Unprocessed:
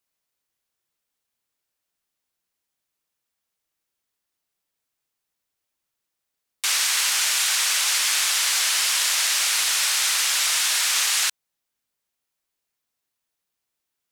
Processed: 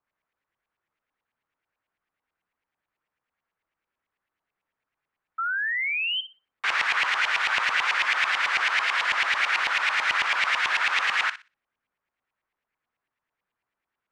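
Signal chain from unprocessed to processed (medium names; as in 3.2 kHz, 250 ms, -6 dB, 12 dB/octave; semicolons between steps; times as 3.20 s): LFO low-pass saw up 9.1 Hz 940–2500 Hz; painted sound rise, 5.38–6.21 s, 1.3–3.2 kHz -28 dBFS; thinning echo 61 ms, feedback 23%, high-pass 1 kHz, level -12 dB; trim +1 dB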